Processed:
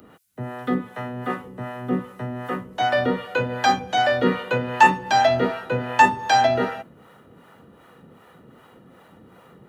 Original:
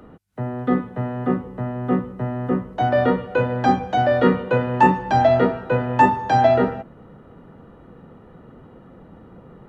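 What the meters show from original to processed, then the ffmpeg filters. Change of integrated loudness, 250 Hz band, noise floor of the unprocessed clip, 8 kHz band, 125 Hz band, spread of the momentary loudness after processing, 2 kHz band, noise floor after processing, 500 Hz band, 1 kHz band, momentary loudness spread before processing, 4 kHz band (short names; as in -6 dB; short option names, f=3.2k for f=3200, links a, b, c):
-1.5 dB, -5.5 dB, -47 dBFS, n/a, -7.0 dB, 15 LU, +4.0 dB, -52 dBFS, -4.0 dB, -0.5 dB, 11 LU, +8.5 dB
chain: -filter_complex "[0:a]bass=f=250:g=-1,treble=f=4k:g=-5,crystalizer=i=10:c=0,highpass=83,acrossover=split=510[a][b];[a]aeval=exprs='val(0)*(1-0.7/2+0.7/2*cos(2*PI*2.6*n/s))':c=same[c];[b]aeval=exprs='val(0)*(1-0.7/2-0.7/2*cos(2*PI*2.6*n/s))':c=same[d];[c][d]amix=inputs=2:normalize=0,highshelf=f=6.5k:g=4,volume=-2.5dB"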